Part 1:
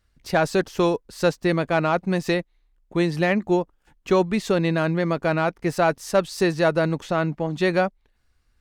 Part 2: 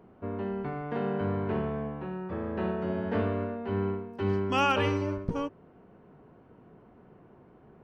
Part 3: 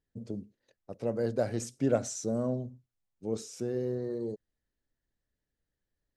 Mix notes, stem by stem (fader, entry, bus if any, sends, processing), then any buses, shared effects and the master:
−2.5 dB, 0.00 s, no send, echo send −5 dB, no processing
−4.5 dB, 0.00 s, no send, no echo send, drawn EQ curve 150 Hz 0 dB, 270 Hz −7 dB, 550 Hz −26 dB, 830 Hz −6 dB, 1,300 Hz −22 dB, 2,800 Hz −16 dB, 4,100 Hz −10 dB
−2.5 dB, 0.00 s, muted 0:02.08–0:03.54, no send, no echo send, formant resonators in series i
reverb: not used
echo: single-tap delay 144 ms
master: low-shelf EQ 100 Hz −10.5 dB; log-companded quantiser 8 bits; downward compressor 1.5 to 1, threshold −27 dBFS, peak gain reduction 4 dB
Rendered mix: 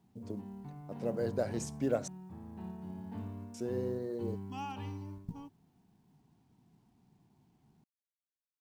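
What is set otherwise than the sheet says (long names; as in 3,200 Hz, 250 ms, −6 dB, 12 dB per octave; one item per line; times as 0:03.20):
stem 1: muted
stem 3: missing formant resonators in series i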